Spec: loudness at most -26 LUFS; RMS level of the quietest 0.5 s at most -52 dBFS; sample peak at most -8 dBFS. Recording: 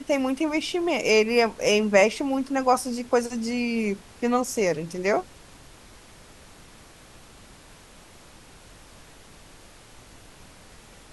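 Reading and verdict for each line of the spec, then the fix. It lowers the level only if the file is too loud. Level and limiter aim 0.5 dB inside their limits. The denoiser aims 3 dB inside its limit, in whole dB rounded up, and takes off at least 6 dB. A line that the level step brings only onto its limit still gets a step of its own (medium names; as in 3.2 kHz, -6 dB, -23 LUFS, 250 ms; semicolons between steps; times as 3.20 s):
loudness -24.0 LUFS: fail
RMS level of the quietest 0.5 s -49 dBFS: fail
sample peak -5.0 dBFS: fail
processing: noise reduction 6 dB, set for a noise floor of -49 dBFS; trim -2.5 dB; peak limiter -8.5 dBFS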